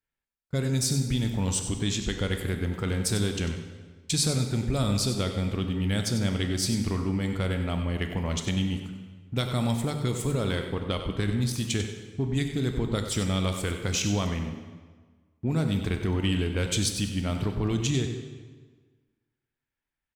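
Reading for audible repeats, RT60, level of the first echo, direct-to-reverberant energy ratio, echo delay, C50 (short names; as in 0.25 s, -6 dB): 1, 1.5 s, -10.5 dB, 4.5 dB, 95 ms, 6.0 dB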